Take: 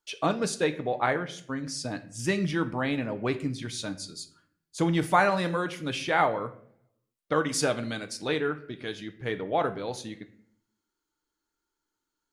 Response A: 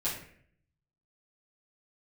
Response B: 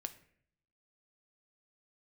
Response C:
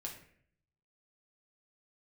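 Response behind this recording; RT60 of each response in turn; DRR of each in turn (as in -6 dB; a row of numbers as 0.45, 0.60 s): B; 0.60, 0.60, 0.60 s; -10.5, 8.5, -1.5 dB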